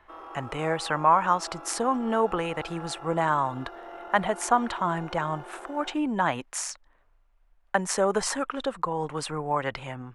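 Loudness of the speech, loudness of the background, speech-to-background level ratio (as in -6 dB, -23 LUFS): -27.5 LUFS, -42.5 LUFS, 15.0 dB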